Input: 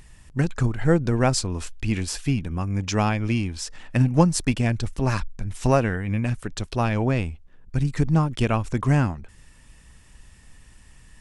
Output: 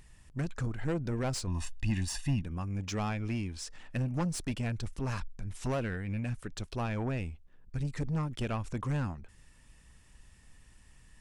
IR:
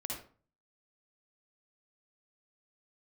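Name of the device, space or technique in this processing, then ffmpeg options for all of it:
saturation between pre-emphasis and de-emphasis: -filter_complex "[0:a]highshelf=frequency=5300:gain=9,asoftclip=type=tanh:threshold=-19dB,highshelf=frequency=5300:gain=-9,asettb=1/sr,asplit=3[link_01][link_02][link_03];[link_01]atrim=end=1.474[link_04];[link_02]atrim=start=1.47:end=2.42,asetpts=PTS-STARTPTS,afade=type=in:duration=0.004:curve=qsin,afade=type=out:start_time=0.946:duration=0.004:curve=qsin,aecho=1:1:1.1:0.98,atrim=end_sample=41895[link_05];[link_03]atrim=start=2.416[link_06];[link_04][link_05]acrossfade=duration=0.004:curve1=hsin:curve2=qsin[link_07];[link_07][link_06]acrossfade=duration=0.004:curve1=qsin:curve2=hsin,volume=-8dB"

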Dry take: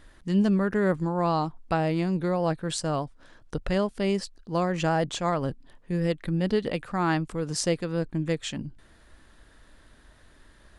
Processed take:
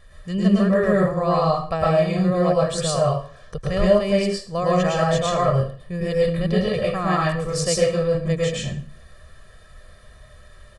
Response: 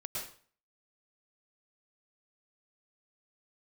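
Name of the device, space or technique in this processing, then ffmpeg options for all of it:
microphone above a desk: -filter_complex "[0:a]aecho=1:1:1.7:0.84[link_01];[1:a]atrim=start_sample=2205[link_02];[link_01][link_02]afir=irnorm=-1:irlink=0,volume=3.5dB"

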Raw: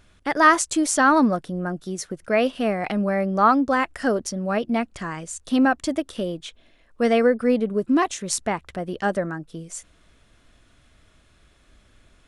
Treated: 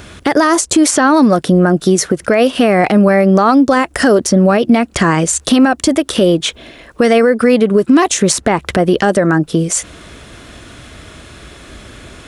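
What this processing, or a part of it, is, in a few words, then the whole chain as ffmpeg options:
mastering chain: -filter_complex "[0:a]highpass=58,equalizer=frequency=380:width_type=o:width=0.77:gain=3.5,acrossover=split=950|2500|5500[link_01][link_02][link_03][link_04];[link_01]acompressor=threshold=-26dB:ratio=4[link_05];[link_02]acompressor=threshold=-36dB:ratio=4[link_06];[link_03]acompressor=threshold=-44dB:ratio=4[link_07];[link_04]acompressor=threshold=-37dB:ratio=4[link_08];[link_05][link_06][link_07][link_08]amix=inputs=4:normalize=0,acompressor=threshold=-36dB:ratio=1.5,asoftclip=type=hard:threshold=-20.5dB,alimiter=level_in=24.5dB:limit=-1dB:release=50:level=0:latency=1,volume=-1dB"

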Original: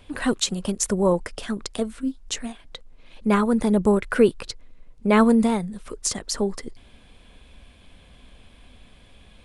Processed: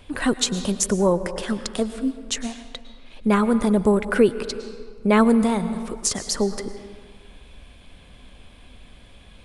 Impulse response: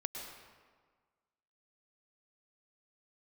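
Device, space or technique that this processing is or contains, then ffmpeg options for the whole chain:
ducked reverb: -filter_complex "[0:a]asplit=3[link_01][link_02][link_03];[1:a]atrim=start_sample=2205[link_04];[link_02][link_04]afir=irnorm=-1:irlink=0[link_05];[link_03]apad=whole_len=416471[link_06];[link_05][link_06]sidechaincompress=threshold=-20dB:ratio=8:attack=20:release=486,volume=-2.5dB[link_07];[link_01][link_07]amix=inputs=2:normalize=0,volume=-1.5dB"

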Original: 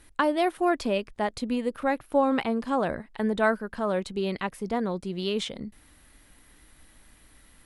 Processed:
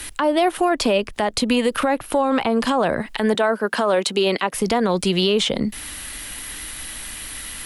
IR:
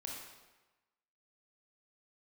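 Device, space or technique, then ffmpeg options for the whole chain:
mastering chain: -filter_complex "[0:a]asettb=1/sr,asplit=3[link_01][link_02][link_03];[link_01]atrim=end=3.344[link_04];[link_02]atrim=start=3.34:end=4.54,asetpts=PTS-STARTPTS,afade=type=in:duration=0.004:curve=qsin,afade=type=out:start_time=1.196:duration=0.004:curve=qsin,highpass=290[link_05];[link_03]atrim=start=4.536[link_06];[link_04][link_05]acrossfade=duration=0.004:curve1=hsin:curve2=qsin[link_07];[link_07][link_06]acrossfade=duration=0.004:curve1=qsin:curve2=hsin,equalizer=frequency=2900:width_type=o:width=0.32:gain=3.5,acrossover=split=120|440|1100[link_08][link_09][link_10][link_11];[link_08]acompressor=threshold=-51dB:ratio=4[link_12];[link_09]acompressor=threshold=-32dB:ratio=4[link_13];[link_10]acompressor=threshold=-26dB:ratio=4[link_14];[link_11]acompressor=threshold=-45dB:ratio=4[link_15];[link_12][link_13][link_14][link_15]amix=inputs=4:normalize=0,acompressor=threshold=-32dB:ratio=2.5,tiltshelf=frequency=1300:gain=-6,alimiter=level_in=30.5dB:limit=-1dB:release=50:level=0:latency=1,volume=-9dB"

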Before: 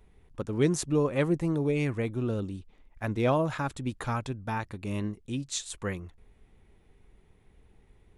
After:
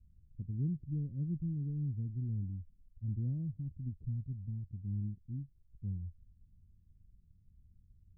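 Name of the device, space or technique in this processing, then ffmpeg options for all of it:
the neighbour's flat through the wall: -af "lowpass=frequency=190:width=0.5412,lowpass=frequency=190:width=1.3066,equalizer=frequency=87:width_type=o:width=0.5:gain=7,volume=-4.5dB"

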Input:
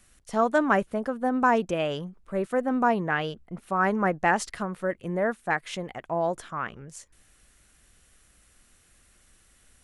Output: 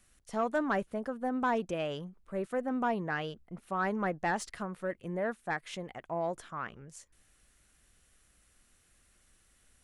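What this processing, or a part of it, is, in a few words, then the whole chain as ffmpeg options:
saturation between pre-emphasis and de-emphasis: -af "highshelf=frequency=2600:gain=11.5,asoftclip=type=tanh:threshold=-13.5dB,highshelf=frequency=2600:gain=-11.5,volume=-6.5dB"

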